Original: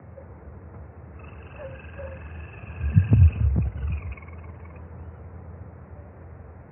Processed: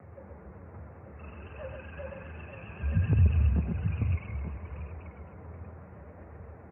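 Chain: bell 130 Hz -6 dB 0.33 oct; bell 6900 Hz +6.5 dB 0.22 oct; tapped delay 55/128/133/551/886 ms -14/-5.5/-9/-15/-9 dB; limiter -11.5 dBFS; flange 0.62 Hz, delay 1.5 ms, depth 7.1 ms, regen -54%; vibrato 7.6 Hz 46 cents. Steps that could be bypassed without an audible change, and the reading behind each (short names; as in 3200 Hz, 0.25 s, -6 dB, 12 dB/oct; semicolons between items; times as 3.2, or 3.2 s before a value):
bell 6900 Hz: input band ends at 300 Hz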